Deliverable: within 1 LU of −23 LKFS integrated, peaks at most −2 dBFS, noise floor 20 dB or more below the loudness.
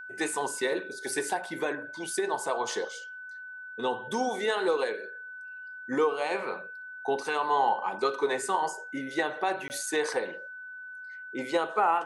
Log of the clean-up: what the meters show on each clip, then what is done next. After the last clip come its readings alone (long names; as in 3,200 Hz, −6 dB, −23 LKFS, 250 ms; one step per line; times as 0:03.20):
number of dropouts 1; longest dropout 19 ms; interfering tone 1,500 Hz; level of the tone −40 dBFS; integrated loudness −30.0 LKFS; sample peak −13.0 dBFS; target loudness −23.0 LKFS
→ repair the gap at 0:09.68, 19 ms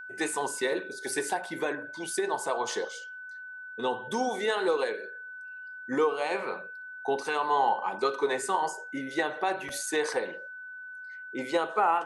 number of dropouts 0; interfering tone 1,500 Hz; level of the tone −40 dBFS
→ notch filter 1,500 Hz, Q 30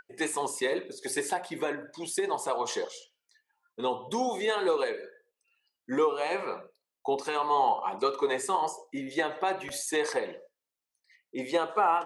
interfering tone none found; integrated loudness −30.5 LKFS; sample peak −13.0 dBFS; target loudness −23.0 LKFS
→ level +7.5 dB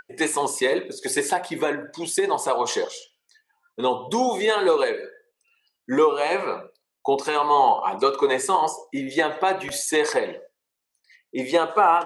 integrated loudness −23.0 LKFS; sample peak −5.5 dBFS; background noise floor −82 dBFS